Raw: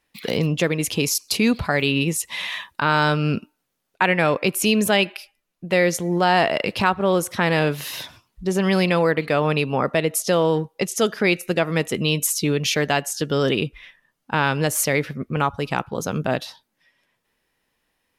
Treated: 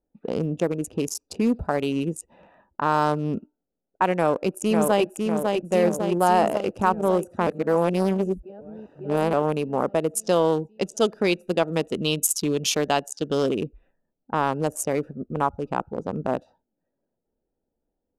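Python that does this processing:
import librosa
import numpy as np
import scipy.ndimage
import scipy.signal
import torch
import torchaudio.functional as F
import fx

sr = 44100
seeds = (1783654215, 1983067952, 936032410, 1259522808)

y = fx.echo_throw(x, sr, start_s=4.15, length_s=0.91, ms=550, feedback_pct=70, wet_db=-3.0)
y = fx.peak_eq(y, sr, hz=3700.0, db=10.5, octaves=1.2, at=(10.16, 13.45), fade=0.02)
y = fx.edit(y, sr, fx.reverse_span(start_s=7.47, length_s=1.86), tone=tone)
y = fx.wiener(y, sr, points=41)
y = fx.env_lowpass(y, sr, base_hz=1400.0, full_db=-19.0)
y = fx.graphic_eq(y, sr, hz=(125, 1000, 2000, 4000, 8000), db=(-9, 4, -11, -11, 5))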